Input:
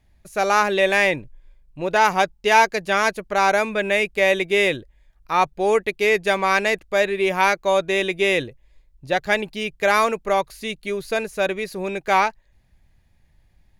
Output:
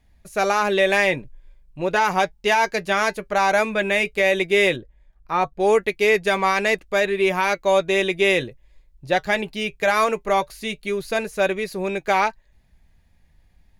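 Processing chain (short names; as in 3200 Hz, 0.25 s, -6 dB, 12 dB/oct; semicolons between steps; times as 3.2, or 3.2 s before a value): 4.76–5.6 high shelf 2000 Hz -10 dB; limiter -9.5 dBFS, peak gain reduction 7.5 dB; flange 0.15 Hz, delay 4.1 ms, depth 2.2 ms, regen -63%; gain +5 dB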